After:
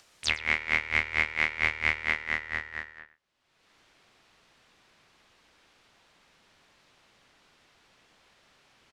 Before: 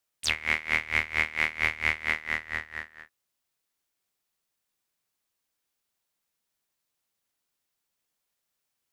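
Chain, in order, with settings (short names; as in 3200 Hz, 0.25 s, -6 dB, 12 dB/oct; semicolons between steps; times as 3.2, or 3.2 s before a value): LPF 6600 Hz 12 dB/oct, from 2.99 s 3500 Hz; upward compressor, threshold -42 dBFS; outdoor echo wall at 18 m, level -16 dB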